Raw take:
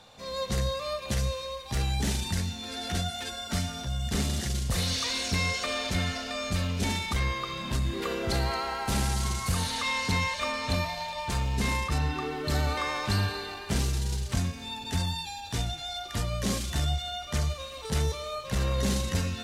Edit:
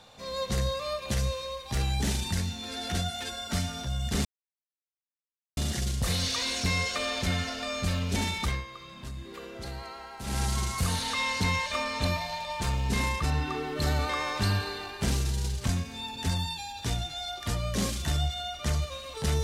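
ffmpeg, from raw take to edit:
-filter_complex "[0:a]asplit=4[s0][s1][s2][s3];[s0]atrim=end=4.25,asetpts=PTS-STARTPTS,afade=t=out:st=4.246:d=0.004:c=hsin,apad=pad_dur=1.32[s4];[s1]atrim=start=4.25:end=7.32,asetpts=PTS-STARTPTS,afade=t=in:d=0.004:c=hsin,afade=t=out:st=2.89:d=0.18:silence=0.281838[s5];[s2]atrim=start=7.32:end=8.92,asetpts=PTS-STARTPTS,volume=0.282[s6];[s3]atrim=start=8.92,asetpts=PTS-STARTPTS,afade=t=in:d=0.18:silence=0.281838[s7];[s4][s5][s6][s7]concat=n=4:v=0:a=1"

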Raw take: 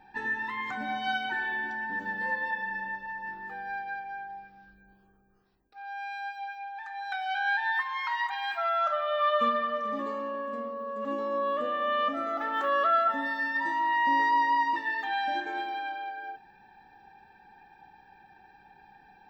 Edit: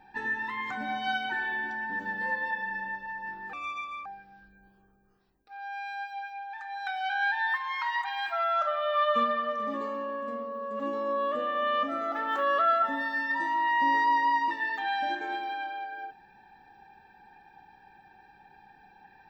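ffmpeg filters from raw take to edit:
-filter_complex "[0:a]asplit=3[s0][s1][s2];[s0]atrim=end=3.534[s3];[s1]atrim=start=3.53:end=4.31,asetpts=PTS-STARTPTS,asetrate=65268,aresample=44100[s4];[s2]atrim=start=4.306[s5];[s3][s4]acrossfade=d=0.004:c1=hsin:c2=hsin[s6];[s6][s5]acrossfade=d=0.004:c1=hsin:c2=hsin"

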